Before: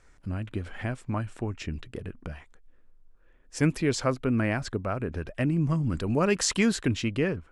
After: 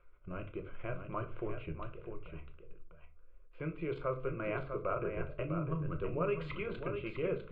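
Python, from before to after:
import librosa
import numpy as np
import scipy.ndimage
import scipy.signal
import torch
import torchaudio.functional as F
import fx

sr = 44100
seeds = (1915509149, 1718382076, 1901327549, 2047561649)

y = fx.level_steps(x, sr, step_db=16)
y = scipy.signal.sosfilt(scipy.signal.butter(4, 2400.0, 'lowpass', fs=sr, output='sos'), y)
y = fx.peak_eq(y, sr, hz=97.0, db=-14.5, octaves=0.56)
y = fx.fixed_phaser(y, sr, hz=1200.0, stages=8)
y = y + 10.0 ** (-7.0 / 20.0) * np.pad(y, (int(651 * sr / 1000.0), 0))[:len(y)]
y = fx.room_shoebox(y, sr, seeds[0], volume_m3=220.0, walls='furnished', distance_m=0.9)
y = F.gain(torch.from_numpy(y), 1.0).numpy()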